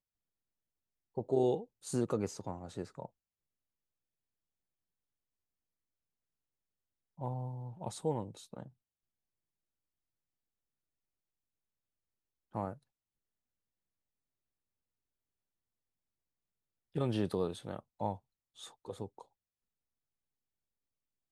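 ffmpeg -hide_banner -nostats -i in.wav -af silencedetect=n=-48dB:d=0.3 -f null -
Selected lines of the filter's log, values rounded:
silence_start: 0.00
silence_end: 1.17 | silence_duration: 1.17
silence_start: 3.06
silence_end: 7.19 | silence_duration: 4.13
silence_start: 8.68
silence_end: 12.55 | silence_duration: 3.87
silence_start: 12.74
silence_end: 16.95 | silence_duration: 4.22
silence_start: 18.17
silence_end: 18.59 | silence_duration: 0.42
silence_start: 19.22
silence_end: 21.31 | silence_duration: 2.09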